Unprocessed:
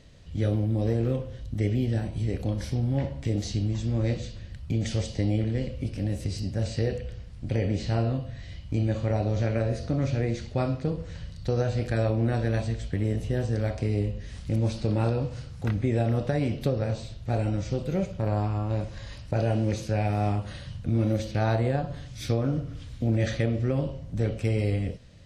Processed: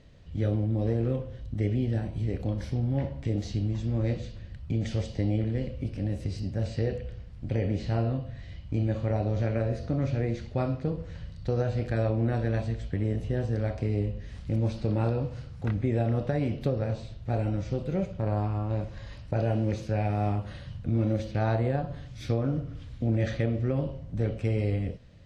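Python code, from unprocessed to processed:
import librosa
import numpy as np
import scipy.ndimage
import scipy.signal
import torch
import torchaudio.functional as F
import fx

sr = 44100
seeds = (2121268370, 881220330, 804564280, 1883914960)

y = fx.lowpass(x, sr, hz=2700.0, slope=6)
y = F.gain(torch.from_numpy(y), -1.5).numpy()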